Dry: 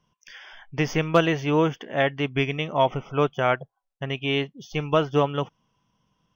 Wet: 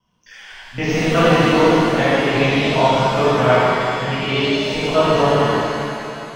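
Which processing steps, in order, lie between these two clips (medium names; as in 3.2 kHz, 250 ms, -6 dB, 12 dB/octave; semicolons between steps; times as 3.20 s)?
time reversed locally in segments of 52 ms; pitch-shifted reverb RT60 2.6 s, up +7 st, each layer -8 dB, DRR -11 dB; trim -3 dB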